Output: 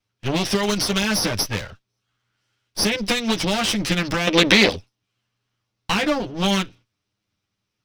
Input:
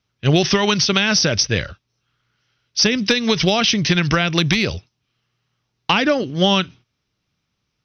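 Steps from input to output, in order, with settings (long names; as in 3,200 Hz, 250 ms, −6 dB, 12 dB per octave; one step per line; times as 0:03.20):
lower of the sound and its delayed copy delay 9.8 ms
0:04.27–0:04.76: graphic EQ with 10 bands 125 Hz −5 dB, 250 Hz +7 dB, 500 Hz +10 dB, 1,000 Hz +4 dB, 2,000 Hz +7 dB, 4,000 Hz +8 dB
level −3.5 dB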